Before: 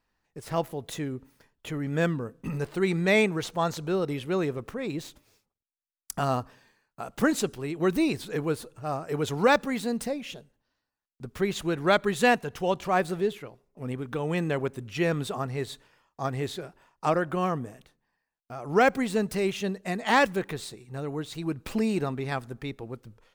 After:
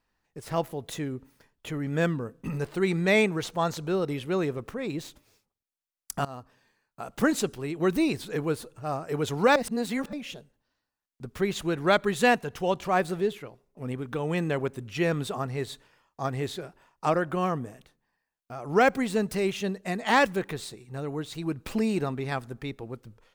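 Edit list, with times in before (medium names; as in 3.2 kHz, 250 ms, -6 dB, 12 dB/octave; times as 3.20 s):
6.25–7.14 s: fade in, from -18.5 dB
9.56–10.13 s: reverse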